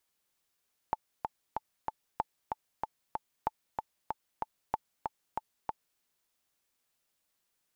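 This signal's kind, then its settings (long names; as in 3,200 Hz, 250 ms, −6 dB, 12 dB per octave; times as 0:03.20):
click track 189 BPM, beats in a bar 4, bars 4, 874 Hz, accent 4 dB −15.5 dBFS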